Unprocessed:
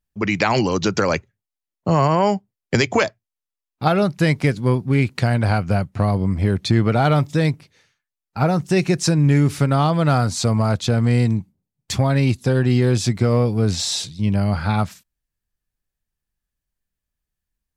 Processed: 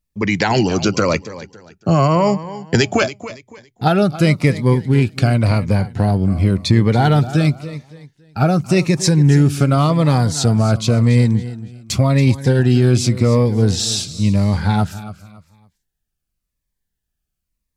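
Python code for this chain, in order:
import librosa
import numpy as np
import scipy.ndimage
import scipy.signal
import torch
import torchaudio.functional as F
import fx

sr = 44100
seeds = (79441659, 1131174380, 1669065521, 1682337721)

p1 = x + fx.echo_feedback(x, sr, ms=280, feedback_pct=31, wet_db=-15.0, dry=0)
p2 = fx.notch_cascade(p1, sr, direction='falling', hz=0.91)
y = p2 * 10.0 ** (4.0 / 20.0)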